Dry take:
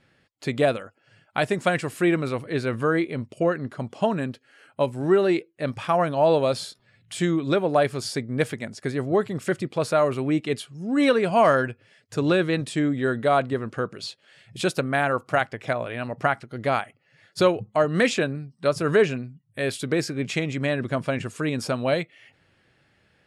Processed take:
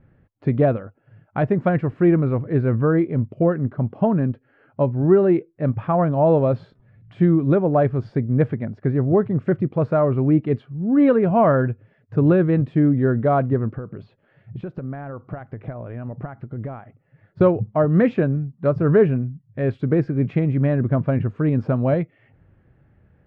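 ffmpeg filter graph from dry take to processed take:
ffmpeg -i in.wav -filter_complex "[0:a]asettb=1/sr,asplit=3[link_01][link_02][link_03];[link_01]atrim=end=13.734[link_04];[link_02]atrim=start=13.73:end=17.41,asetpts=PTS-STARTPTS,afade=type=in:duration=0.004:curve=qsin,afade=type=out:start_time=3.676:duration=0.004:curve=qsin,acompressor=threshold=-34dB:ratio=4:attack=3.2:release=140:knee=1:detection=peak,highshelf=frequency=3800:gain=-5.5[link_05];[link_03]atrim=start=17.406[link_06];[link_04][link_05]acrossfade=duration=0.004:curve1=hsin:curve2=qsin[link_07];[link_07][link_06]acrossfade=duration=0.004:curve1=qsin:curve2=hsin,lowpass=1600,aemphasis=mode=reproduction:type=riaa" out.wav

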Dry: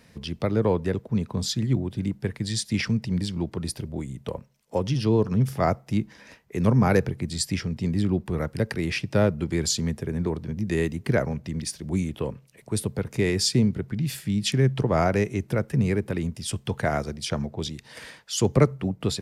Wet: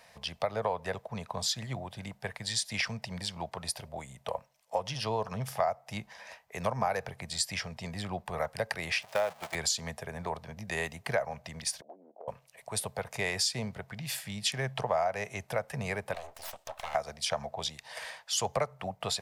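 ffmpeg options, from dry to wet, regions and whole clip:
ffmpeg -i in.wav -filter_complex "[0:a]asettb=1/sr,asplit=3[link_01][link_02][link_03];[link_01]atrim=end=9.024[link_04];[link_02]atrim=start=9.02:end=9.55,asetpts=PTS-STARTPTS,afade=type=in:duration=0.004:curve=qsin,afade=type=out:start_time=0.526:duration=0.004:curve=qsin,aeval=exprs='val(0)+0.5*0.0355*sgn(val(0))':channel_layout=same,highpass=frequency=430:poles=1,agate=range=-13dB:threshold=-32dB:ratio=16:release=100:detection=peak[link_05];[link_03]atrim=start=9.546[link_06];[link_04][link_05]acrossfade=duration=0.004:curve1=hsin:curve2=qsin[link_07];[link_07][link_06]acrossfade=duration=0.004:curve1=qsin:curve2=hsin,asettb=1/sr,asplit=3[link_08][link_09][link_10];[link_08]atrim=end=11.814[link_11];[link_09]atrim=start=11.81:end=12.28,asetpts=PTS-STARTPTS,afade=type=in:duration=0.004:curve=qsin,afade=type=out:start_time=0.466:duration=0.004:curve=qsin,asuperpass=centerf=440:order=8:qfactor=0.92,acompressor=threshold=-38dB:ratio=6:attack=3.2:release=140:knee=1:detection=peak[link_12];[link_10]atrim=start=12.276[link_13];[link_11][link_12]acrossfade=duration=0.004:curve1=hsin:curve2=qsin[link_14];[link_14][link_13]acrossfade=duration=0.004:curve1=qsin:curve2=hsin,asettb=1/sr,asplit=3[link_15][link_16][link_17];[link_15]atrim=end=16.144[link_18];[link_16]atrim=start=16.14:end=16.95,asetpts=PTS-STARTPTS,afade=type=in:duration=0.004:curve=qsin,afade=type=out:start_time=0.806:duration=0.004:curve=qsin,highpass=frequency=210:poles=1,aeval=exprs='abs(val(0))':channel_layout=same,acompressor=threshold=-35dB:ratio=3:attack=3.2:release=140:knee=1:detection=peak[link_19];[link_17]atrim=start=16.946[link_20];[link_18][link_19]acrossfade=duration=0.004:curve1=hsin:curve2=qsin[link_21];[link_21][link_20]acrossfade=duration=0.004:curve1=qsin:curve2=hsin,lowshelf=frequency=470:width_type=q:width=3:gain=-13,acompressor=threshold=-26dB:ratio=6,bandreject=frequency=1400:width=16" out.wav

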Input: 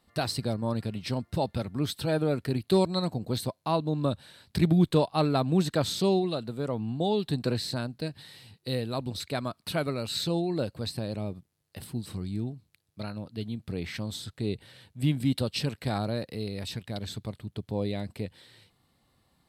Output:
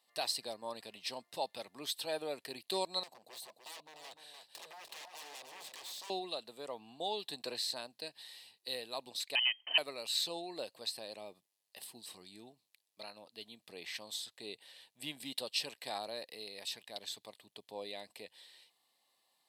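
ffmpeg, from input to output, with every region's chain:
ffmpeg -i in.wav -filter_complex "[0:a]asettb=1/sr,asplit=3[link_01][link_02][link_03];[link_01]atrim=end=3.034[link_04];[link_02]atrim=start=3.03:end=6.1,asetpts=PTS-STARTPTS,afade=type=in:duration=0.004:curve=qsin,afade=type=out:start_time=3.066:duration=0.004:curve=qsin,aeval=exprs='0.0299*(abs(mod(val(0)/0.0299+3,4)-2)-1)':channel_layout=same,acompressor=threshold=-43dB:ratio=4:attack=3.2:release=140:knee=1:detection=peak,aecho=1:1:299:0.473,atrim=end_sample=135387[link_05];[link_03]atrim=start=6.096[link_06];[link_04][link_05]acrossfade=duration=0.004:curve1=hsin:curve2=qsin[link_07];[link_07][link_06]acrossfade=duration=0.004:curve1=qsin:curve2=hsin,asettb=1/sr,asplit=3[link_08][link_09][link_10];[link_08]atrim=end=9.354[link_11];[link_09]atrim=start=9.35:end=9.78,asetpts=PTS-STARTPTS,afade=type=in:duration=0.004:curve=qsin,afade=type=out:start_time=0.426:duration=0.004:curve=qsin,aeval=exprs='clip(val(0),-1,0.0376)':channel_layout=same,acontrast=32,lowpass=frequency=2700:width_type=q:width=0.5098,lowpass=frequency=2700:width_type=q:width=0.6013,lowpass=frequency=2700:width_type=q:width=0.9,lowpass=frequency=2700:width_type=q:width=2.563,afreqshift=-3200[link_12];[link_10]atrim=start=9.776[link_13];[link_11][link_12]acrossfade=duration=0.004:curve1=hsin:curve2=qsin[link_14];[link_14][link_13]acrossfade=duration=0.004:curve1=qsin:curve2=hsin,highpass=830,equalizer=frequency=1400:width=3.1:gain=-14,bandreject=frequency=2200:width=16,volume=-1.5dB" out.wav

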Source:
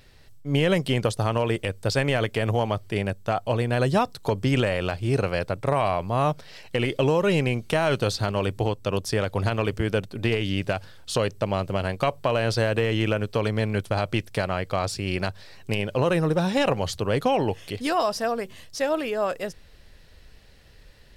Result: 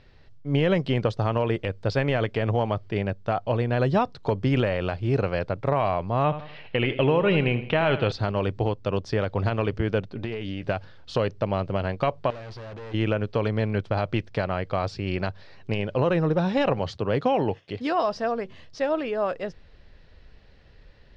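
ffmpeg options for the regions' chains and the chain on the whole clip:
ffmpeg -i in.wav -filter_complex "[0:a]asettb=1/sr,asplit=3[link_01][link_02][link_03];[link_01]atrim=end=6.244[link_04];[link_02]atrim=start=6.24:end=8.12,asetpts=PTS-STARTPTS,afade=type=in:duration=0.004:curve=qsin,afade=type=out:start_time=1.876:duration=0.004:curve=qsin,lowpass=frequency=2900:width_type=q:width=1.9,aecho=1:1:81|162|243|324:0.237|0.102|0.0438|0.0189,atrim=end_sample=82908[link_05];[link_03]atrim=start=8.116[link_06];[link_04][link_05]acrossfade=duration=0.004:curve1=hsin:curve2=qsin[link_07];[link_07][link_06]acrossfade=duration=0.004:curve1=qsin:curve2=hsin,asettb=1/sr,asplit=3[link_08][link_09][link_10];[link_08]atrim=end=10.154[link_11];[link_09]atrim=start=10.15:end=10.67,asetpts=PTS-STARTPTS,afade=type=in:duration=0.004:curve=qsin,afade=type=out:start_time=0.516:duration=0.004:curve=qsin,asplit=2[link_12][link_13];[link_13]adelay=14,volume=-11.5dB[link_14];[link_12][link_14]amix=inputs=2:normalize=0,atrim=end_sample=22932,acompressor=threshold=-26dB:ratio=5:attack=3.2:release=140:knee=1:detection=peak[link_15];[link_10]atrim=start=10.666[link_16];[link_11][link_15]acrossfade=duration=0.004:curve1=hsin:curve2=qsin[link_17];[link_17][link_16]acrossfade=duration=0.004:curve1=qsin:curve2=hsin,asettb=1/sr,asplit=3[link_18][link_19][link_20];[link_18]atrim=end=12.304[link_21];[link_19]atrim=start=12.3:end=12.94,asetpts=PTS-STARTPTS,afade=type=in:duration=0.004:curve=qsin,afade=type=out:start_time=0.636:duration=0.004:curve=qsin,lowpass=10000,aeval=exprs='(tanh(70.8*val(0)+0.4)-tanh(0.4))/70.8':channel_layout=same[link_22];[link_20]atrim=start=12.936[link_23];[link_21][link_22]acrossfade=duration=0.004:curve1=hsin:curve2=qsin[link_24];[link_24][link_23]acrossfade=duration=0.004:curve1=qsin:curve2=hsin,asettb=1/sr,asplit=3[link_25][link_26][link_27];[link_25]atrim=end=16.794[link_28];[link_26]atrim=start=16.79:end=18.04,asetpts=PTS-STARTPTS,afade=type=in:duration=0.004:curve=qsin,afade=type=out:start_time=1.246:duration=0.004:curve=qsin,highpass=84,agate=range=-33dB:threshold=-39dB:ratio=3:release=100:detection=peak[link_29];[link_27]atrim=start=18.036[link_30];[link_28][link_29]acrossfade=duration=0.004:curve1=hsin:curve2=qsin[link_31];[link_31][link_30]acrossfade=duration=0.004:curve1=qsin:curve2=hsin,lowpass=frequency=5500:width=0.5412,lowpass=frequency=5500:width=1.3066,highshelf=frequency=3000:gain=-9" out.wav

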